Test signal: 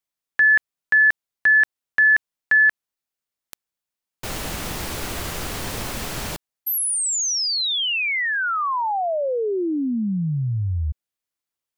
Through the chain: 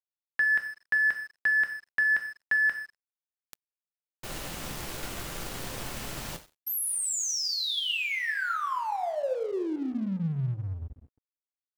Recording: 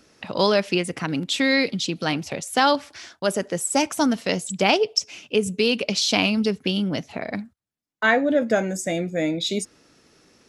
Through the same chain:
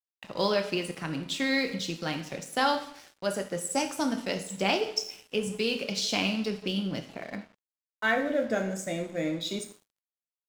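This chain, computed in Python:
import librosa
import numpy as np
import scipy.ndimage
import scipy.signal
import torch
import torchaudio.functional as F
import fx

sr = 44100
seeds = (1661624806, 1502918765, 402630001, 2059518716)

y = fx.rev_double_slope(x, sr, seeds[0], early_s=0.69, late_s=3.3, knee_db=-25, drr_db=4.5)
y = np.sign(y) * np.maximum(np.abs(y) - 10.0 ** (-40.0 / 20.0), 0.0)
y = y * 10.0 ** (-8.0 / 20.0)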